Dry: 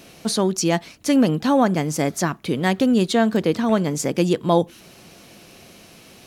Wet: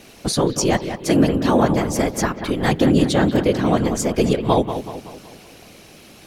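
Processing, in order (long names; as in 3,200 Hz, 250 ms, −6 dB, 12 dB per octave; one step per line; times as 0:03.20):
random phases in short frames
bucket-brigade delay 188 ms, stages 4,096, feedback 48%, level −9.5 dB
level +1 dB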